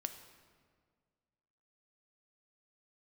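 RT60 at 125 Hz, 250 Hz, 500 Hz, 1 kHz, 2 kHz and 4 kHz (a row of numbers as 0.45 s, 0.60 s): 2.2 s, 2.1 s, 1.9 s, 1.7 s, 1.5 s, 1.2 s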